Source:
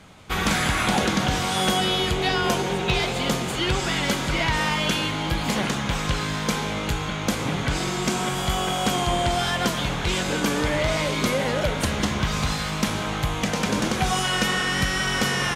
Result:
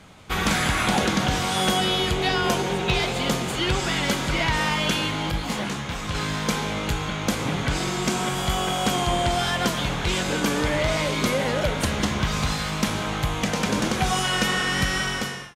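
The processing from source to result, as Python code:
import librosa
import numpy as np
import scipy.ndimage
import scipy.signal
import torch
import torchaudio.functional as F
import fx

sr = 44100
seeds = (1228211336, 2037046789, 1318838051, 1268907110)

y = fx.fade_out_tail(x, sr, length_s=0.59)
y = fx.detune_double(y, sr, cents=23, at=(5.31, 6.15))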